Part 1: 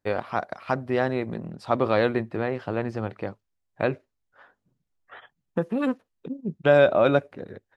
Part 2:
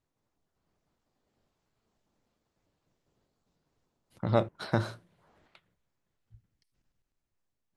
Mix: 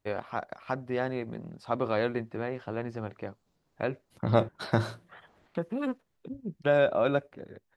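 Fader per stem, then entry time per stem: -6.5 dB, +2.0 dB; 0.00 s, 0.00 s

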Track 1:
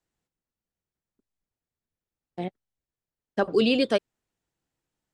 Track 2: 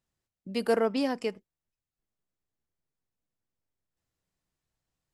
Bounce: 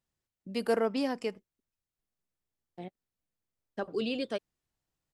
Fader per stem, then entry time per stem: -11.0 dB, -2.5 dB; 0.40 s, 0.00 s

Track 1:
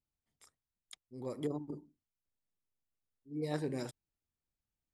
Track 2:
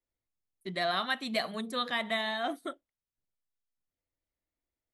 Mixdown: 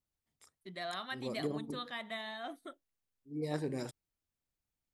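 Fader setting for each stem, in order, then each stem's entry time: 0.0 dB, -10.0 dB; 0.00 s, 0.00 s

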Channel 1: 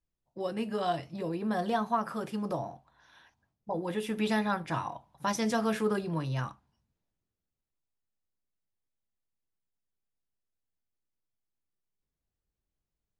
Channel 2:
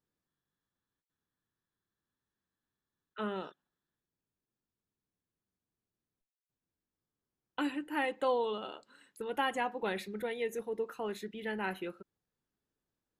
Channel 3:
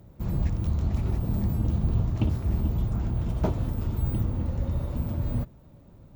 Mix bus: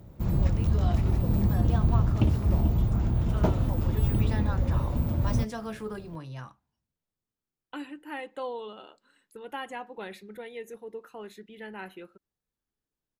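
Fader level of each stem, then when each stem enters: -7.5 dB, -4.5 dB, +2.0 dB; 0.00 s, 0.15 s, 0.00 s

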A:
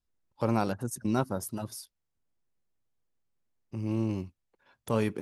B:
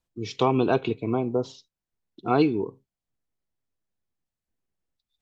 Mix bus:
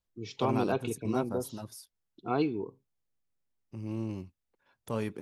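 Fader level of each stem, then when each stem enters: -5.5 dB, -8.0 dB; 0.00 s, 0.00 s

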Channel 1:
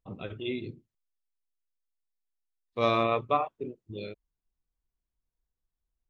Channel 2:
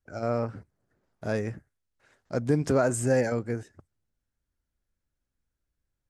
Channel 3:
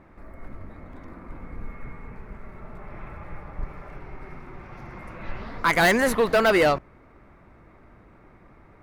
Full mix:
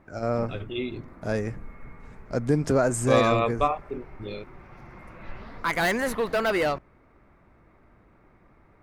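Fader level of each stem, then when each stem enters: +2.5 dB, +1.5 dB, -5.5 dB; 0.30 s, 0.00 s, 0.00 s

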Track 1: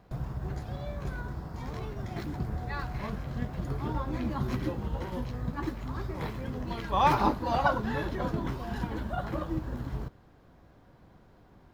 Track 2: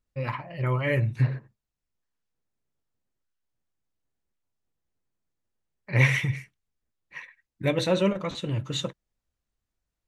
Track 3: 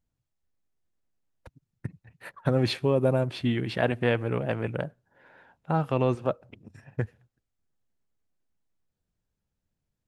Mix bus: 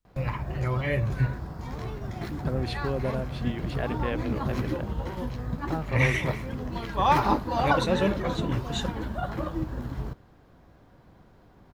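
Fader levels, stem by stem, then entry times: +2.0 dB, -2.5 dB, -7.0 dB; 0.05 s, 0.00 s, 0.00 s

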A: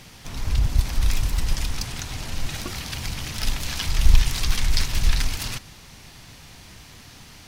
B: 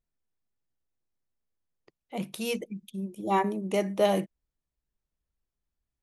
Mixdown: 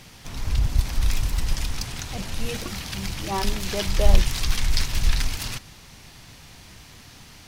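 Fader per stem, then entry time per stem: -1.0 dB, -3.0 dB; 0.00 s, 0.00 s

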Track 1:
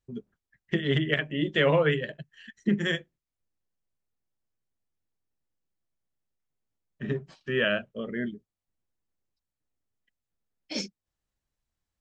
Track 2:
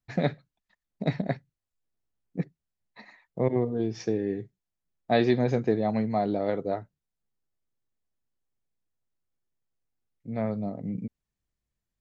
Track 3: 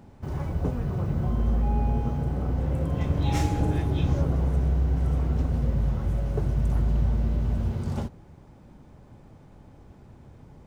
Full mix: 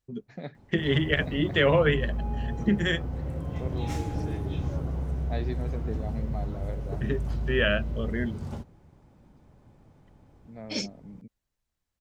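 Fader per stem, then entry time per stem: +1.0 dB, -13.0 dB, -6.5 dB; 0.00 s, 0.20 s, 0.55 s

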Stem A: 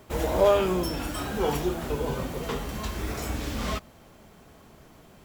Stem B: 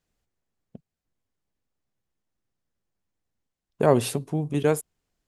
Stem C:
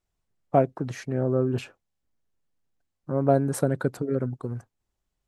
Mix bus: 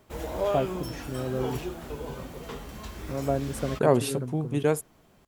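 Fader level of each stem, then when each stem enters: -7.5 dB, -2.0 dB, -6.5 dB; 0.00 s, 0.00 s, 0.00 s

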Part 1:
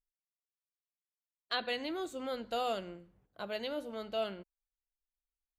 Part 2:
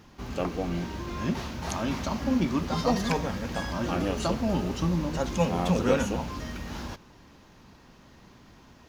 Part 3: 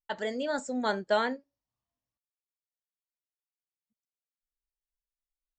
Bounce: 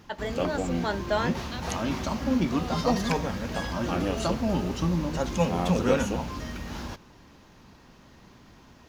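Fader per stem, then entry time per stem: -6.0 dB, +0.5 dB, -0.5 dB; 0.00 s, 0.00 s, 0.00 s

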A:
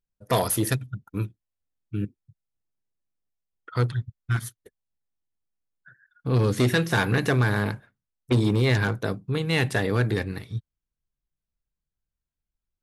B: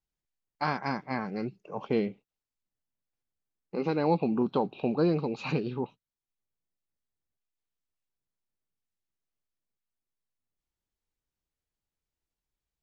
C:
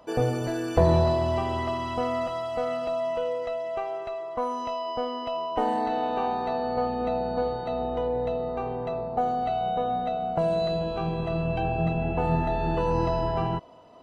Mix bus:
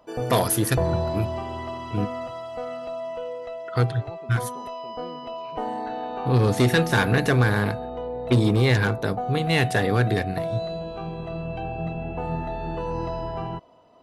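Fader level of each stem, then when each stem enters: +2.0 dB, -18.5 dB, -4.0 dB; 0.00 s, 0.00 s, 0.00 s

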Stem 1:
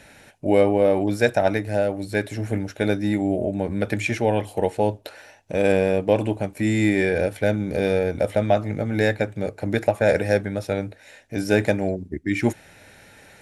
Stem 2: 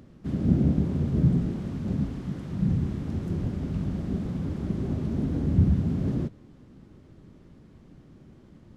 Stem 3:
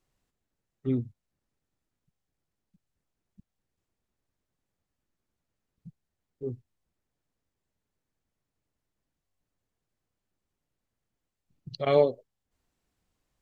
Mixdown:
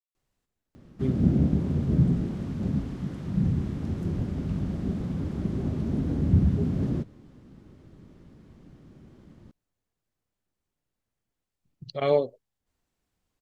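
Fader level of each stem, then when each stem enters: mute, 0.0 dB, -1.0 dB; mute, 0.75 s, 0.15 s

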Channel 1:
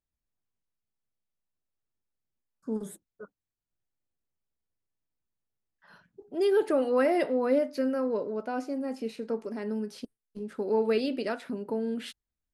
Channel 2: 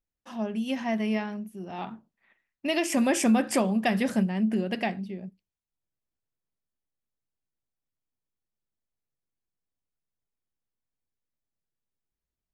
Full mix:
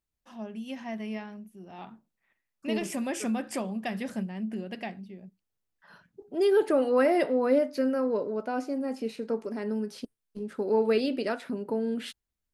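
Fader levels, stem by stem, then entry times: +1.5 dB, -8.0 dB; 0.00 s, 0.00 s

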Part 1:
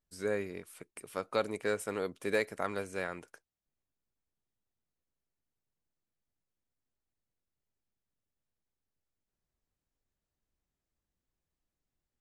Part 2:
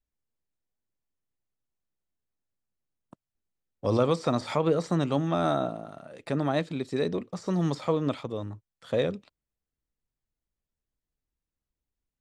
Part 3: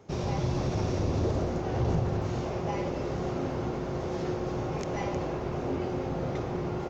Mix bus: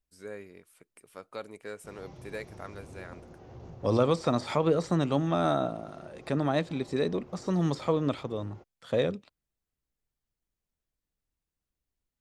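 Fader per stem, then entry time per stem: -8.5 dB, -0.5 dB, -19.5 dB; 0.00 s, 0.00 s, 1.75 s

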